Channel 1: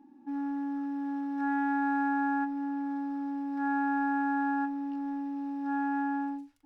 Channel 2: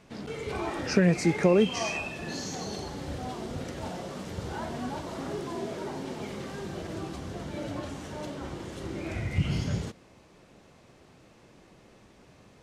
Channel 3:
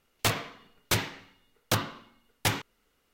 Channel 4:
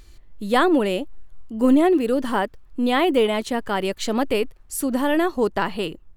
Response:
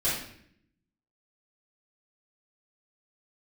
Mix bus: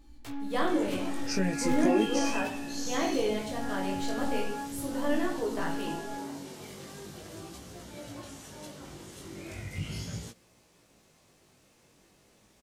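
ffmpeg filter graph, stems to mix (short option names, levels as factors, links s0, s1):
-filter_complex "[0:a]volume=0.596[s0];[1:a]aemphasis=mode=production:type=75fm,adelay=400,volume=0.562[s1];[2:a]volume=0.112[s2];[3:a]volume=0.224,asplit=2[s3][s4];[s4]volume=0.398[s5];[4:a]atrim=start_sample=2205[s6];[s5][s6]afir=irnorm=-1:irlink=0[s7];[s0][s1][s2][s3][s7]amix=inputs=5:normalize=0,flanger=delay=17:depth=4.2:speed=0.38"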